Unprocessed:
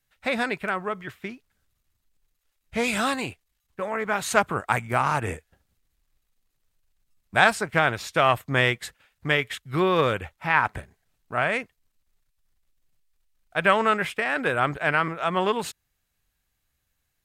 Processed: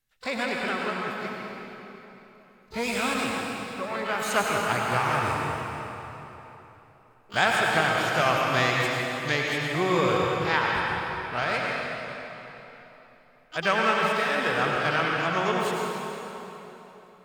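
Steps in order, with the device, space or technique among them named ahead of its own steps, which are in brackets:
shimmer-style reverb (pitch-shifted copies added +12 semitones −10 dB; convolution reverb RT60 3.5 s, pre-delay 84 ms, DRR −2 dB)
level −5 dB

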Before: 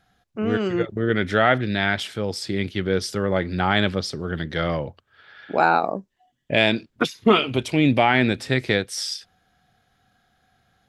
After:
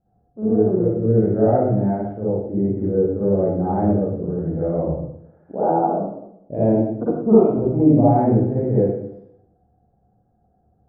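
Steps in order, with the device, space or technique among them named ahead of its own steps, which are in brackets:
next room (low-pass filter 680 Hz 24 dB per octave; convolution reverb RT60 0.80 s, pre-delay 44 ms, DRR −10 dB)
level −5 dB

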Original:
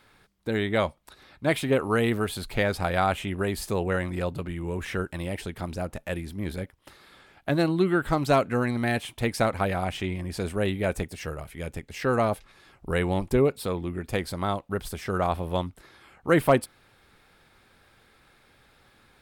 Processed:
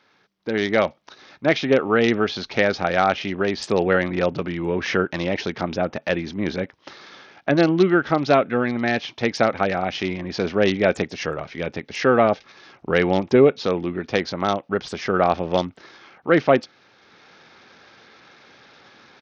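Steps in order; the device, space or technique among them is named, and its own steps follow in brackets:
dynamic equaliser 1,000 Hz, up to −7 dB, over −47 dBFS, Q 5.9
Bluetooth headset (high-pass filter 190 Hz 12 dB per octave; automatic gain control gain up to 11.5 dB; downsampling to 16,000 Hz; level −1 dB; SBC 64 kbit/s 48,000 Hz)

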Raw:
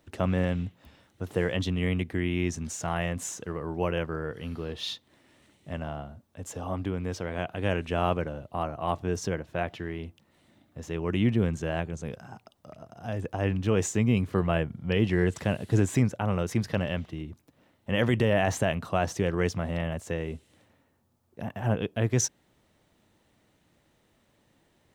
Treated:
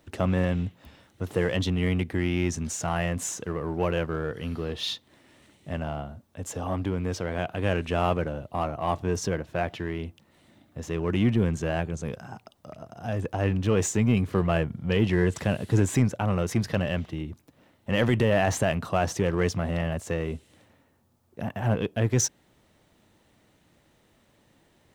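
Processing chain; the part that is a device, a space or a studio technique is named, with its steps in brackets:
parallel distortion (in parallel at −5 dB: hard clipping −29.5 dBFS, distortion −4 dB)

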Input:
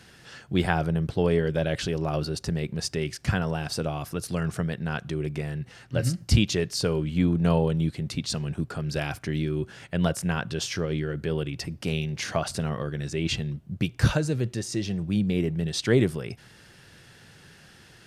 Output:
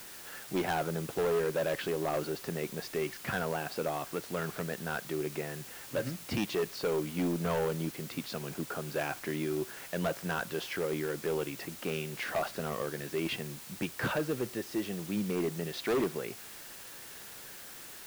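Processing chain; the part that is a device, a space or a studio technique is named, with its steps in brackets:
aircraft radio (band-pass filter 310–2,300 Hz; hard clipping −26 dBFS, distortion −9 dB; white noise bed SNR 13 dB)

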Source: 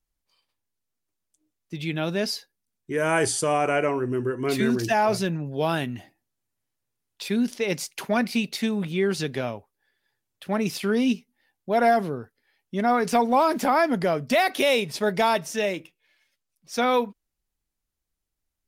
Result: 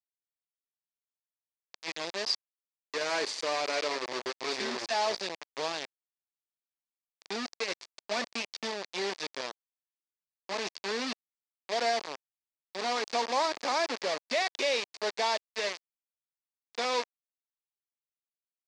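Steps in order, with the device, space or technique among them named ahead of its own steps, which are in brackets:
0:01.90–0:02.35: high-shelf EQ 3,700 Hz +6 dB
hand-held game console (bit reduction 4 bits; loudspeaker in its box 490–6,000 Hz, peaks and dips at 750 Hz −4 dB, 1,400 Hz −7 dB, 3,000 Hz −4 dB, 4,600 Hz +5 dB)
level −6 dB

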